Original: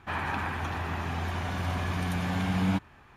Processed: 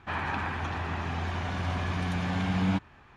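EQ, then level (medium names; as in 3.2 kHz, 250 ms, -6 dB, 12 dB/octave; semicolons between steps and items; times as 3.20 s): distance through air 100 m; treble shelf 4.8 kHz +7 dB; 0.0 dB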